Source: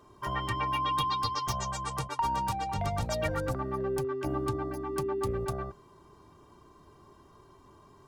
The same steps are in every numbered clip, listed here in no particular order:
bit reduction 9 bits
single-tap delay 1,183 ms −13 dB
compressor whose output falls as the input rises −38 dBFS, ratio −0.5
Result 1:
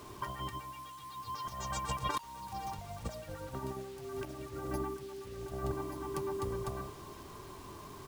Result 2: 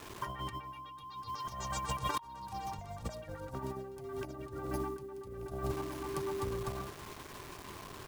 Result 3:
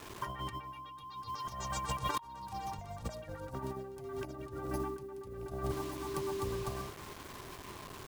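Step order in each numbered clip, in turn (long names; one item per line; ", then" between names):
single-tap delay, then compressor whose output falls as the input rises, then bit reduction
bit reduction, then single-tap delay, then compressor whose output falls as the input rises
single-tap delay, then bit reduction, then compressor whose output falls as the input rises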